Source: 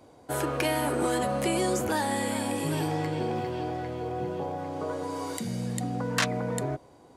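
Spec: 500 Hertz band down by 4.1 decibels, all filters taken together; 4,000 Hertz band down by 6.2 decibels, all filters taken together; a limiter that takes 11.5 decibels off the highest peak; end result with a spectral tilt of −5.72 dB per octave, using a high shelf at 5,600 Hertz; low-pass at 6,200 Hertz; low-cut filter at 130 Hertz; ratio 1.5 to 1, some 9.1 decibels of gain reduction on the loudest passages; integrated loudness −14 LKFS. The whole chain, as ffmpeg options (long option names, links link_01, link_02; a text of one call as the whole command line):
ffmpeg -i in.wav -af "highpass=130,lowpass=6200,equalizer=frequency=500:width_type=o:gain=-5,equalizer=frequency=4000:width_type=o:gain=-5.5,highshelf=frequency=5600:gain=-5.5,acompressor=threshold=-50dB:ratio=1.5,volume=29.5dB,alimiter=limit=-5dB:level=0:latency=1" out.wav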